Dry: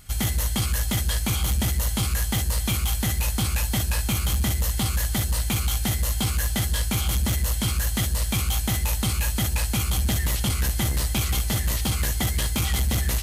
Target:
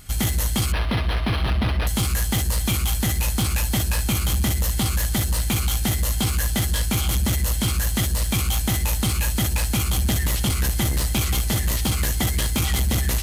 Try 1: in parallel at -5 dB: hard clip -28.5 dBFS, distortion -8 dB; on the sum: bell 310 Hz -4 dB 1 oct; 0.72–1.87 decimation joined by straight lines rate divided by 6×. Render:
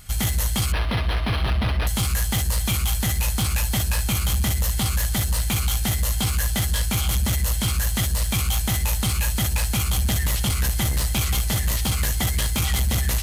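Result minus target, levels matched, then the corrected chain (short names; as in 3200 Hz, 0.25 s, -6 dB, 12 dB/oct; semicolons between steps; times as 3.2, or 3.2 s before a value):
250 Hz band -3.0 dB
in parallel at -5 dB: hard clip -28.5 dBFS, distortion -8 dB; on the sum: bell 310 Hz +2.5 dB 1 oct; 0.72–1.87 decimation joined by straight lines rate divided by 6×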